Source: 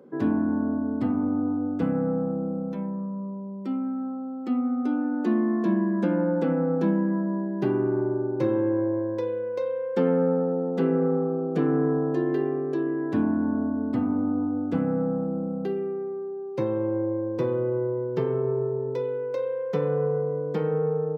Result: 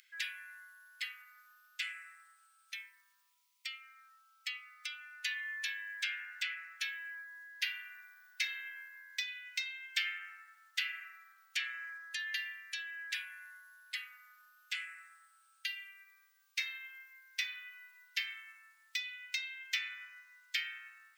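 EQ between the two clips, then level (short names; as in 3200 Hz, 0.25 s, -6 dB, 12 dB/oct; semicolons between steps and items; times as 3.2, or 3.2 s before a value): steep high-pass 2000 Hz 48 dB/oct; +16.0 dB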